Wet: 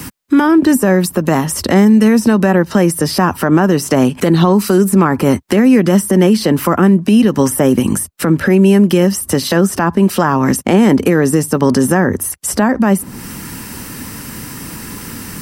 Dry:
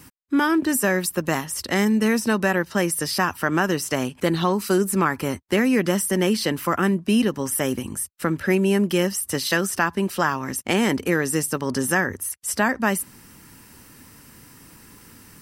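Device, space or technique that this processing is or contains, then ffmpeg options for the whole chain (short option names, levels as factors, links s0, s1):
mastering chain: -filter_complex "[0:a]equalizer=f=200:t=o:w=0.77:g=3.5,acrossover=split=100|1100[s0][s1][s2];[s0]acompressor=threshold=0.00398:ratio=4[s3];[s1]acompressor=threshold=0.112:ratio=4[s4];[s2]acompressor=threshold=0.0126:ratio=4[s5];[s3][s4][s5]amix=inputs=3:normalize=0,acompressor=threshold=0.0398:ratio=2,alimiter=level_in=9.44:limit=0.891:release=50:level=0:latency=1,volume=0.891"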